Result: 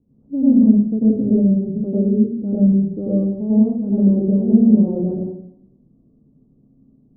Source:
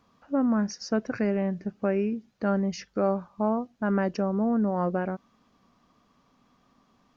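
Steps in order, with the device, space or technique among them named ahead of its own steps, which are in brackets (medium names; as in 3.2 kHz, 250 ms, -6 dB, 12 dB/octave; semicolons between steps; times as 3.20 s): next room (low-pass 370 Hz 24 dB/octave; reverberation RT60 0.75 s, pre-delay 89 ms, DRR -8 dB); trim +4.5 dB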